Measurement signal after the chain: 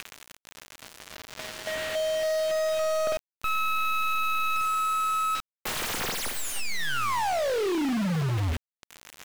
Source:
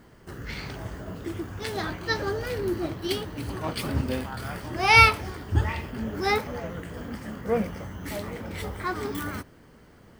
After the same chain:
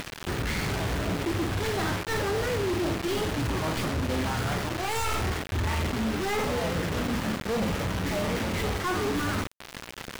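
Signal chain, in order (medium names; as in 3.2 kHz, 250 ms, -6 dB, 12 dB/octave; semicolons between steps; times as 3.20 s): tracing distortion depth 0.41 ms; flutter echo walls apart 8.5 m, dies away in 0.33 s; reverse; compression 10:1, threshold -30 dBFS; reverse; band noise 1.4–3.3 kHz -54 dBFS; word length cut 10-bit, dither none; treble shelf 2.9 kHz -6.5 dB; upward compressor, threshold -37 dBFS; companded quantiser 2-bit; treble shelf 7.8 kHz -7.5 dB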